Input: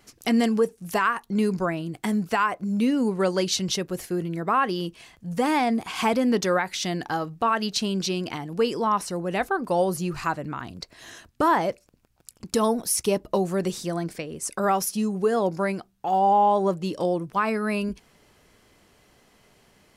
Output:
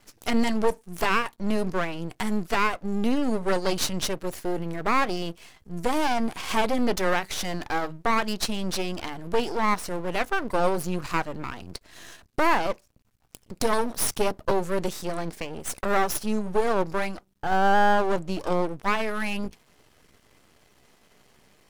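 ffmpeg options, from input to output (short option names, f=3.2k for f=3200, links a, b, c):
-af "atempo=0.92,aeval=exprs='max(val(0),0)':c=same,volume=3dB"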